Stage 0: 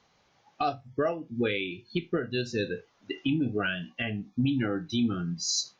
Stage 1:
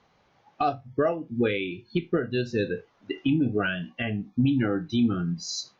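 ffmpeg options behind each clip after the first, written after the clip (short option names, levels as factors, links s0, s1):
-af "aemphasis=mode=reproduction:type=75kf,volume=1.58"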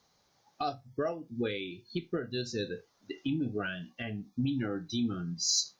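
-af "aexciter=amount=4.8:drive=6.9:freq=4000,volume=0.376"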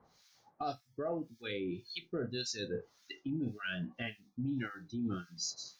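-filter_complex "[0:a]acrossover=split=1500[s0][s1];[s0]aeval=exprs='val(0)*(1-1/2+1/2*cos(2*PI*1.8*n/s))':c=same[s2];[s1]aeval=exprs='val(0)*(1-1/2-1/2*cos(2*PI*1.8*n/s))':c=same[s3];[s2][s3]amix=inputs=2:normalize=0,areverse,acompressor=threshold=0.00794:ratio=6,areverse,volume=2.37"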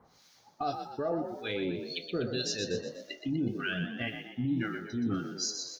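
-filter_complex "[0:a]asplit=7[s0][s1][s2][s3][s4][s5][s6];[s1]adelay=123,afreqshift=44,volume=0.422[s7];[s2]adelay=246,afreqshift=88,volume=0.207[s8];[s3]adelay=369,afreqshift=132,volume=0.101[s9];[s4]adelay=492,afreqshift=176,volume=0.0495[s10];[s5]adelay=615,afreqshift=220,volume=0.0243[s11];[s6]adelay=738,afreqshift=264,volume=0.0119[s12];[s0][s7][s8][s9][s10][s11][s12]amix=inputs=7:normalize=0,volume=1.68"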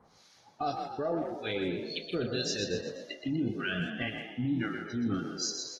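-filter_complex "[0:a]asplit=2[s0][s1];[s1]adelay=160,highpass=300,lowpass=3400,asoftclip=type=hard:threshold=0.0447,volume=0.355[s2];[s0][s2]amix=inputs=2:normalize=0" -ar 48000 -c:a aac -b:a 32k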